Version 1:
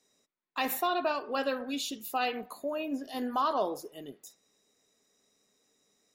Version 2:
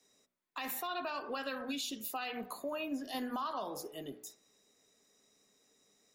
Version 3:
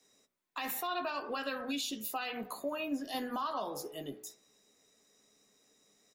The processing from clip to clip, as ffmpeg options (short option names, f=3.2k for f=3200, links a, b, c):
-filter_complex "[0:a]bandreject=f=61.31:t=h:w=4,bandreject=f=122.62:t=h:w=4,bandreject=f=183.93:t=h:w=4,bandreject=f=245.24:t=h:w=4,bandreject=f=306.55:t=h:w=4,bandreject=f=367.86:t=h:w=4,bandreject=f=429.17:t=h:w=4,bandreject=f=490.48:t=h:w=4,bandreject=f=551.79:t=h:w=4,bandreject=f=613.1:t=h:w=4,bandreject=f=674.41:t=h:w=4,bandreject=f=735.72:t=h:w=4,bandreject=f=797.03:t=h:w=4,bandreject=f=858.34:t=h:w=4,bandreject=f=919.65:t=h:w=4,bandreject=f=980.96:t=h:w=4,bandreject=f=1.04227k:t=h:w=4,bandreject=f=1.10358k:t=h:w=4,bandreject=f=1.16489k:t=h:w=4,bandreject=f=1.2262k:t=h:w=4,bandreject=f=1.28751k:t=h:w=4,bandreject=f=1.34882k:t=h:w=4,bandreject=f=1.41013k:t=h:w=4,bandreject=f=1.47144k:t=h:w=4,bandreject=f=1.53275k:t=h:w=4,bandreject=f=1.59406k:t=h:w=4,bandreject=f=1.65537k:t=h:w=4,acrossover=split=240|790|5100[a][b][c][d];[b]acompressor=threshold=-43dB:ratio=6[e];[a][e][c][d]amix=inputs=4:normalize=0,alimiter=level_in=7dB:limit=-24dB:level=0:latency=1:release=148,volume=-7dB,volume=1.5dB"
-filter_complex "[0:a]asplit=2[a][b];[b]adelay=14,volume=-11dB[c];[a][c]amix=inputs=2:normalize=0,volume=1.5dB"